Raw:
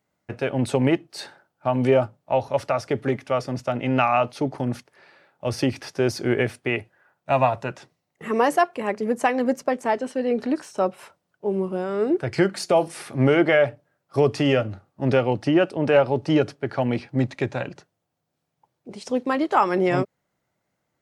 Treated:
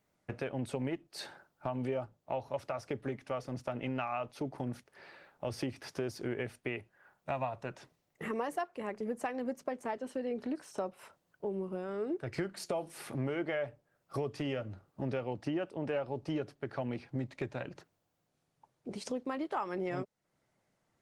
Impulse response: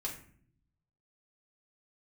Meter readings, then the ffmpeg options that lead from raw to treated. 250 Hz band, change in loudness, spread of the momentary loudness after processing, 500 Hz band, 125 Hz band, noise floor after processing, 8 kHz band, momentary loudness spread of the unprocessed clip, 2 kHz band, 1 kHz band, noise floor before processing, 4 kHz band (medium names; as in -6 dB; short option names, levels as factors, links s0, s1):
-14.5 dB, -15.5 dB, 8 LU, -15.5 dB, -14.0 dB, -80 dBFS, -12.0 dB, 10 LU, -15.5 dB, -16.0 dB, -78 dBFS, -14.5 dB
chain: -af "acompressor=threshold=0.0126:ratio=3" -ar 48000 -c:a libopus -b:a 20k